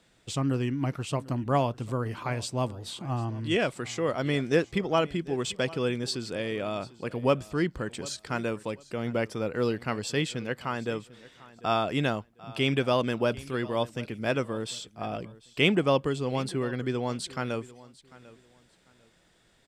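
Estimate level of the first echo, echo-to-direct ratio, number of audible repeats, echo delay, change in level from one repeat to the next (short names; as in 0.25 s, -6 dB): -20.0 dB, -19.5 dB, 2, 0.746 s, -12.0 dB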